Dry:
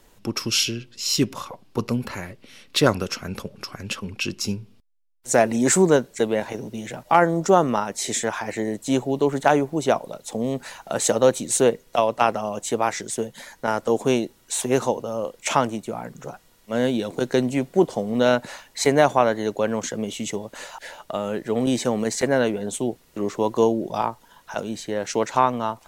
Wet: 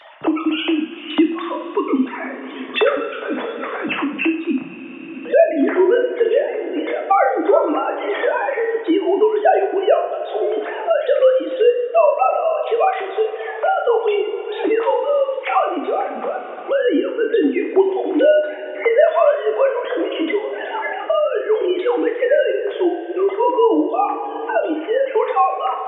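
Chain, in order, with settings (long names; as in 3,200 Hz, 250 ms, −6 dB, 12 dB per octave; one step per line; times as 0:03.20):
three sine waves on the formant tracks
coupled-rooms reverb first 0.53 s, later 3.3 s, from −18 dB, DRR 0 dB
multiband upward and downward compressor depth 70%
level +3 dB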